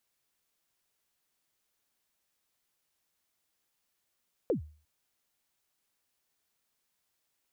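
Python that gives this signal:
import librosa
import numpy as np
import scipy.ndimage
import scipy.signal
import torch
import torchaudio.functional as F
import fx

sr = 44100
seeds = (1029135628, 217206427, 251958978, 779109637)

y = fx.drum_kick(sr, seeds[0], length_s=0.35, level_db=-22, start_hz=560.0, end_hz=76.0, sweep_ms=113.0, decay_s=0.41, click=False)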